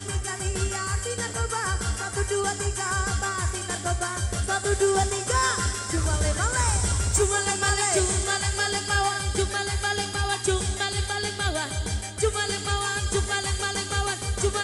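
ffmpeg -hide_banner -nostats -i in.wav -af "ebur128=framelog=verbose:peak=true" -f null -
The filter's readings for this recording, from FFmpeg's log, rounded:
Integrated loudness:
  I:         -25.3 LUFS
  Threshold: -35.3 LUFS
Loudness range:
  LRA:         3.7 LU
  Threshold: -45.0 LUFS
  LRA low:   -26.9 LUFS
  LRA high:  -23.2 LUFS
True peak:
  Peak:      -12.8 dBFS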